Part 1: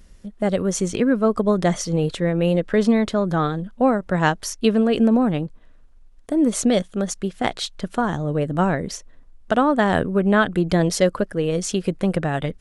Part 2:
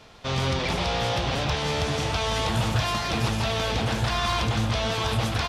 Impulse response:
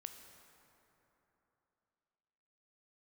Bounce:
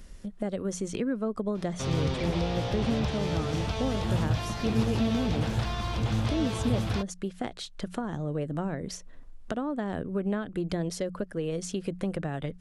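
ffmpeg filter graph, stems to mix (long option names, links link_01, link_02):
-filter_complex "[0:a]bandreject=frequency=60:width_type=h:width=6,bandreject=frequency=120:width_type=h:width=6,bandreject=frequency=180:width_type=h:width=6,acompressor=threshold=-38dB:ratio=2,volume=1.5dB[link_01];[1:a]adelay=1550,volume=-2dB[link_02];[link_01][link_02]amix=inputs=2:normalize=0,acrossover=split=500[link_03][link_04];[link_04]acompressor=threshold=-36dB:ratio=6[link_05];[link_03][link_05]amix=inputs=2:normalize=0"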